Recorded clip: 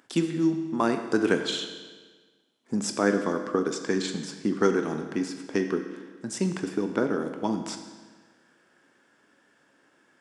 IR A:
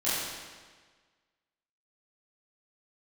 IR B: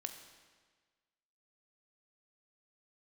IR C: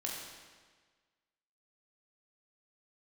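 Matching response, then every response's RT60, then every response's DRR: B; 1.5, 1.5, 1.5 s; -13.0, 6.0, -3.0 dB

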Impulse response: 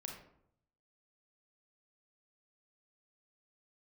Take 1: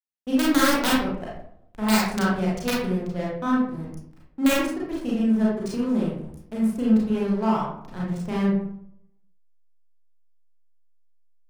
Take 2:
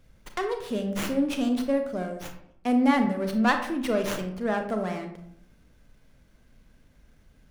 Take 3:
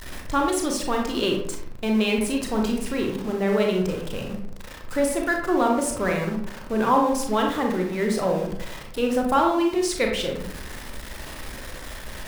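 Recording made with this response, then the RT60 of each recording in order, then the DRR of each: 3; 0.70, 0.70, 0.70 s; -5.5, 5.0, 0.5 dB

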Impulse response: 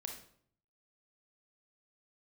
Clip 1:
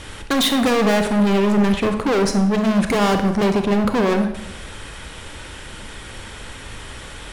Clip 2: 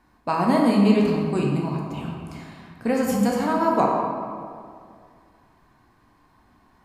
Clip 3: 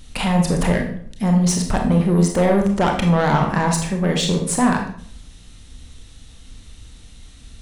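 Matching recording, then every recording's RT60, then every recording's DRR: 3; 0.85, 2.2, 0.60 s; 6.5, -2.0, 2.5 dB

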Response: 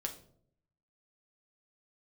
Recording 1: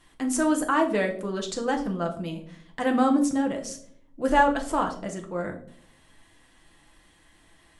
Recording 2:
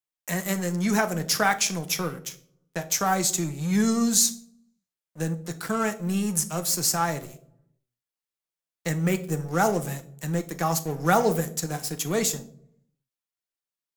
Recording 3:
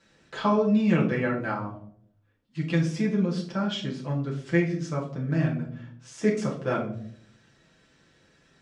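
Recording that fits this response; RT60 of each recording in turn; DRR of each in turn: 1; 0.65, 0.65, 0.65 s; 2.0, 8.0, -4.5 dB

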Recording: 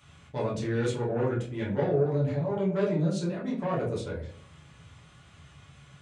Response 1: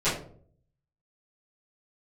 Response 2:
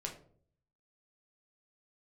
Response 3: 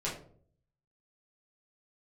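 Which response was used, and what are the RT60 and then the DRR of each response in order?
3; 0.55, 0.55, 0.55 s; -16.0, 0.5, -7.0 dB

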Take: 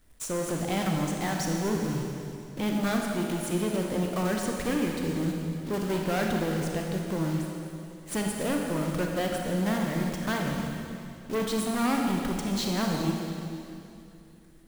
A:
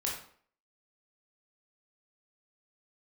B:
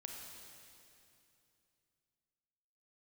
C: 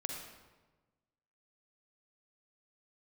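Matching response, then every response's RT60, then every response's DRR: B; 0.55, 2.7, 1.3 s; -3.5, 0.5, 1.5 dB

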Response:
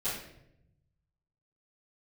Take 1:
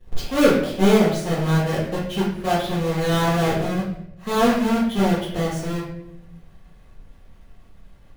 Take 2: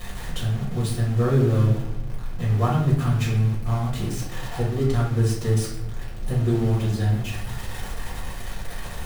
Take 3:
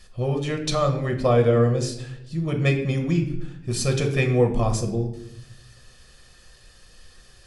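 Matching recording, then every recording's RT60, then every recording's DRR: 1; 0.80, 0.80, 0.80 s; -15.5, -6.5, 3.5 dB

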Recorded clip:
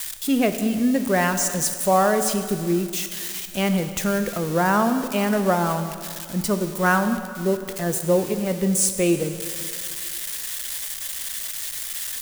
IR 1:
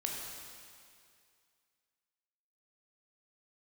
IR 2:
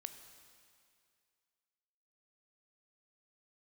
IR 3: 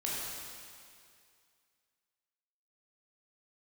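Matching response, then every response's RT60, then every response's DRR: 2; 2.3, 2.3, 2.3 s; -1.5, 8.0, -6.0 dB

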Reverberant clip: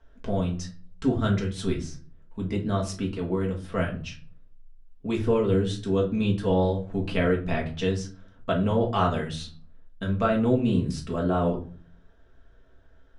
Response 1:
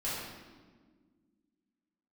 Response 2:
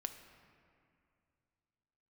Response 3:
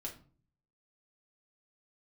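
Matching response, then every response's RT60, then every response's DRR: 3; 1.6, 2.5, 0.40 s; -10.0, 6.5, -1.5 dB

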